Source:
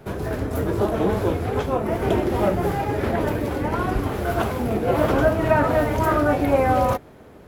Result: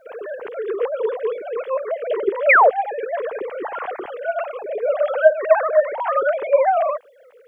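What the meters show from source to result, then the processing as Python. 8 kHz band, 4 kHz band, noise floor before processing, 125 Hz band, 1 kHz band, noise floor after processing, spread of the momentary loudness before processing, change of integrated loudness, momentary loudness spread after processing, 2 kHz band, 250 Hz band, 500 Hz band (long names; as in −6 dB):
below −30 dB, can't be measured, −45 dBFS, below −40 dB, +2.5 dB, −49 dBFS, 6 LU, +2.0 dB, 14 LU, +6.5 dB, −16.5 dB, +3.5 dB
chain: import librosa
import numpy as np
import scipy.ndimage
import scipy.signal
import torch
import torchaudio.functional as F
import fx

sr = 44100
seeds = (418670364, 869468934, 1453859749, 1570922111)

y = fx.sine_speech(x, sr)
y = fx.spec_paint(y, sr, seeds[0], shape='fall', start_s=2.49, length_s=0.21, low_hz=470.0, high_hz=2600.0, level_db=-11.0)
y = fx.quant_dither(y, sr, seeds[1], bits=12, dither='none')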